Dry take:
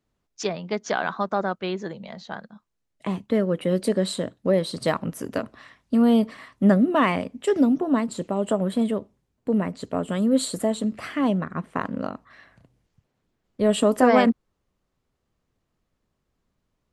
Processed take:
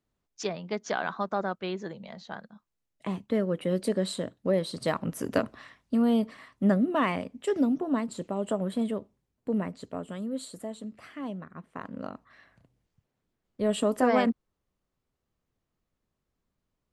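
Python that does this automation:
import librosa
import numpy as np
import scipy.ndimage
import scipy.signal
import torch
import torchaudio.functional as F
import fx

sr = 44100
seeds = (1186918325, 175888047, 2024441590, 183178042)

y = fx.gain(x, sr, db=fx.line((4.9, -5.0), (5.38, 1.5), (6.03, -6.0), (9.63, -6.0), (10.37, -14.0), (11.68, -14.0), (12.14, -6.5)))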